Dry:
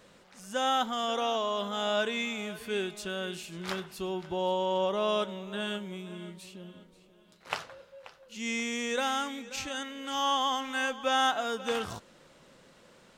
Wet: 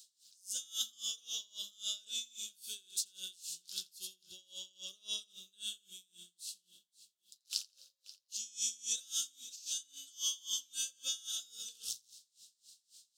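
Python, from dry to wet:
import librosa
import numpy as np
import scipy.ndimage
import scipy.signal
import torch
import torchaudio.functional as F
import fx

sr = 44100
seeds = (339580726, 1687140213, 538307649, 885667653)

y = scipy.signal.sosfilt(scipy.signal.cheby2(4, 40, 2200.0, 'highpass', fs=sr, output='sos'), x)
y = fx.echo_feedback(y, sr, ms=85, feedback_pct=38, wet_db=-8.5)
y = y * 10.0 ** (-26 * (0.5 - 0.5 * np.cos(2.0 * np.pi * 3.7 * np.arange(len(y)) / sr)) / 20.0)
y = F.gain(torch.from_numpy(y), 12.0).numpy()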